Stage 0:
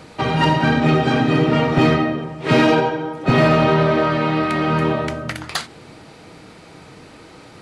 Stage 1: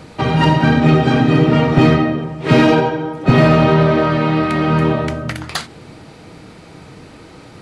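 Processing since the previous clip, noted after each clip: bass shelf 270 Hz +6 dB; trim +1 dB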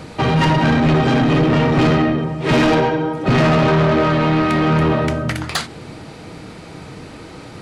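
saturation -14.5 dBFS, distortion -9 dB; trim +3.5 dB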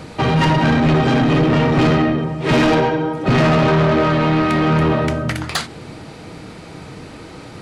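no audible change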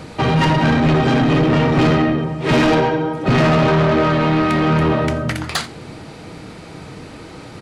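delay 86 ms -21.5 dB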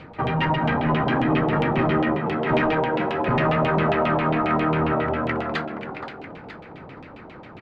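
frequency-shifting echo 473 ms, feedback 33%, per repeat +76 Hz, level -5 dB; LFO low-pass saw down 7.4 Hz 700–3100 Hz; trim -9 dB

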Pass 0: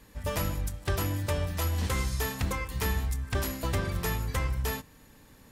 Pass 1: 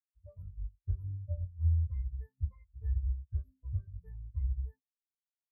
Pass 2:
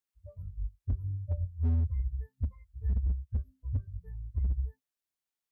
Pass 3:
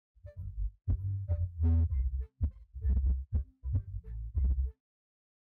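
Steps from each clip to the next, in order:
spectral contrast expander 4:1; trim -2.5 dB
hard clipper -28 dBFS, distortion -13 dB; trim +4 dB
median filter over 41 samples

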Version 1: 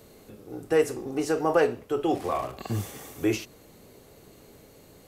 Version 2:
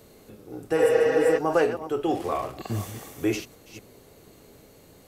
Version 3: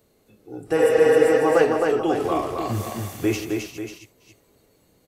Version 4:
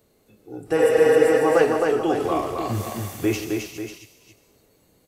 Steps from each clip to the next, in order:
chunks repeated in reverse 237 ms, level -11.5 dB; spectral replace 0.79–1.35 s, 450–7100 Hz before
spectral noise reduction 13 dB; on a send: multi-tap echo 165/264/541 ms -13.5/-4/-10 dB; on the sum: trim +2.5 dB
on a send at -20 dB: tilt EQ +4.5 dB/octave + reverberation RT60 1.1 s, pre-delay 93 ms

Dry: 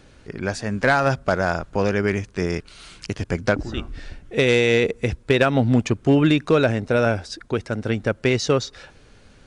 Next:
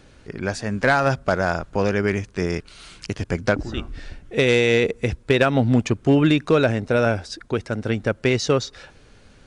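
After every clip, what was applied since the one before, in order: no audible change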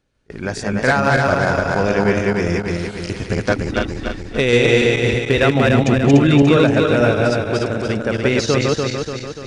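backward echo that repeats 146 ms, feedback 71%, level -1 dB; gate with hold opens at -23 dBFS; trim +1 dB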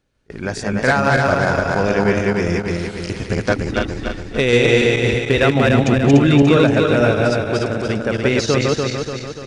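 delay 410 ms -20 dB

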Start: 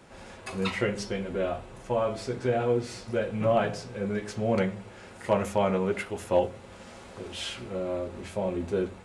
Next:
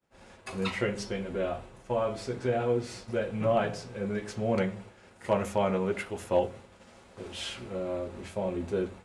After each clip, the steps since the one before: expander -40 dBFS; trim -2 dB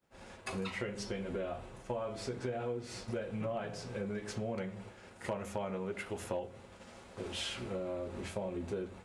compression 6:1, threshold -36 dBFS, peak gain reduction 15.5 dB; trim +1 dB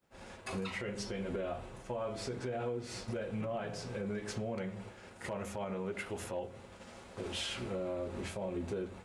peak limiter -30 dBFS, peak gain reduction 7.5 dB; trim +1.5 dB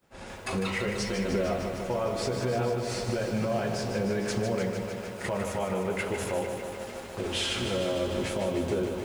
bit-crushed delay 151 ms, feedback 80%, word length 10-bit, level -7 dB; trim +8 dB

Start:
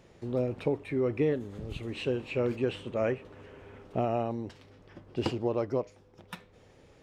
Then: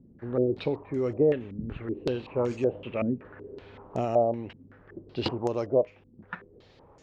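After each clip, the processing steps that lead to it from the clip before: step-sequenced low-pass 5.3 Hz 240–6700 Hz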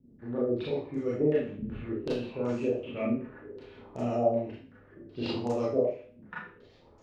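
rotary cabinet horn 8 Hz; Schroeder reverb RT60 0.44 s, combs from 26 ms, DRR -6.5 dB; trim -7 dB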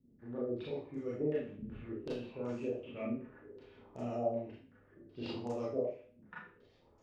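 band-stop 4.1 kHz, Q 21; trim -8.5 dB

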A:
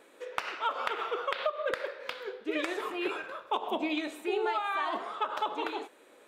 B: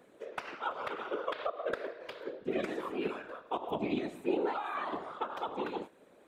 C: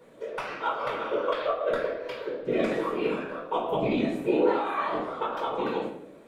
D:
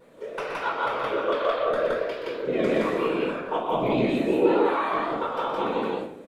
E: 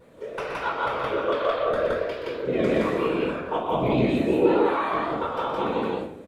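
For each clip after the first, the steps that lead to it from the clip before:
tilt shelf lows +5.5 dB, about 800 Hz; whisper effect; trim -4 dB
reverberation RT60 0.65 s, pre-delay 6 ms, DRR -3.5 dB
vibrato 3.3 Hz 63 cents; on a send: loudspeakers at several distances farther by 42 m -8 dB, 58 m 0 dB
peaking EQ 75 Hz +12.5 dB 1.5 oct

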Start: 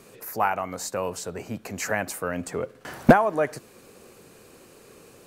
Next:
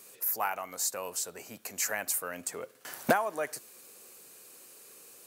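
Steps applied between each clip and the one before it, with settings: RIAA curve recording; trim -8 dB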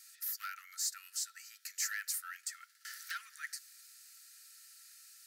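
saturation -24.5 dBFS, distortion -10 dB; rippled Chebyshev high-pass 1.3 kHz, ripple 9 dB; trim +2 dB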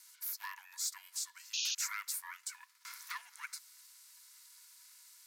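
ring modulator 370 Hz; painted sound noise, 1.53–1.75 s, 2.4–6.8 kHz -37 dBFS; trim +1.5 dB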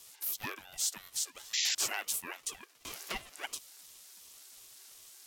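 ring modulator with a swept carrier 830 Hz, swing 30%, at 2.8 Hz; trim +7.5 dB

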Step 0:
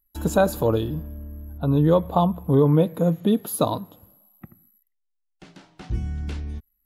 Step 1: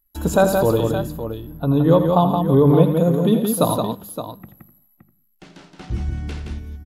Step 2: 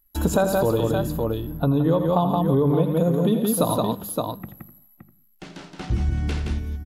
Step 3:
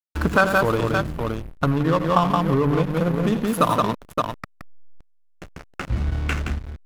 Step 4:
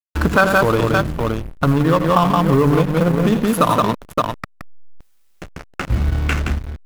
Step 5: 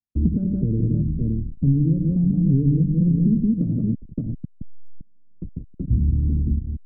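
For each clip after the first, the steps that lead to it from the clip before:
hum notches 50/100/150/200 Hz; on a send: multi-tap echo 83/171/568 ms -11/-5/-10.5 dB; on the sum: trim +3 dB
compression 4:1, threshold -22 dBFS, peak gain reduction 12 dB; trim +4 dB
high-order bell 1.8 kHz +15.5 dB; hysteresis with a dead band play -18.5 dBFS
in parallel at +1 dB: peak limiter -12 dBFS, peak gain reduction 8 dB; on the sum: companded quantiser 6-bit; trim -1 dB
inverse Chebyshev low-pass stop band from 890 Hz, stop band 60 dB; three bands compressed up and down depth 40%

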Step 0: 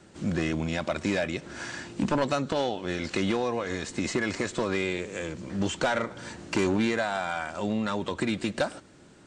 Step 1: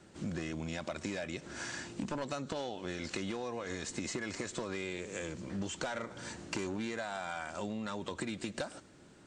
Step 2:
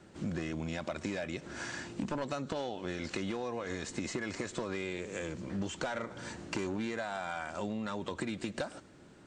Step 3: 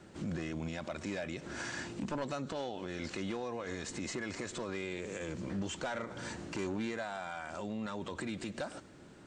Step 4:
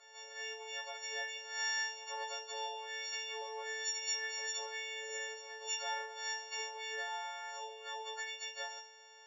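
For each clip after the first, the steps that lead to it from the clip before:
dynamic bell 7 kHz, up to +5 dB, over -54 dBFS, Q 1.1; compression, threshold -30 dBFS, peak gain reduction 8.5 dB; trim -4.5 dB
treble shelf 4.2 kHz -6 dB; trim +2 dB
peak limiter -31.5 dBFS, peak gain reduction 8 dB; trim +1.5 dB
partials quantised in pitch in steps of 4 st; brick-wall FIR band-pass 400–8700 Hz; chord resonator G2 sus4, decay 0.3 s; trim +6.5 dB

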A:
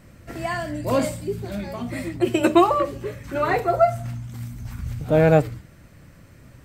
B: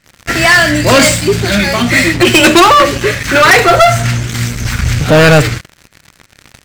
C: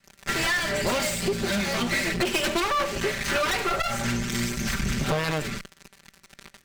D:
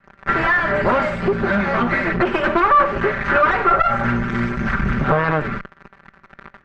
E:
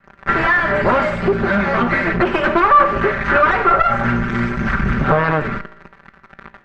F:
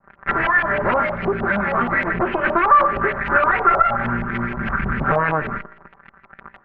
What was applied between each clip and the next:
high-order bell 3.2 kHz +12.5 dB 2.8 oct; waveshaping leveller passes 5; trim -1 dB
comb filter that takes the minimum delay 5.1 ms; compression 6:1, threshold -16 dBFS, peak gain reduction 12.5 dB; trim -7 dB
resonant low-pass 1.4 kHz, resonance Q 2; trim +7 dB
feedback comb 56 Hz, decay 0.94 s, harmonics all, mix 50%; trim +7 dB
LFO low-pass saw up 6.4 Hz 750–3100 Hz; trim -6 dB

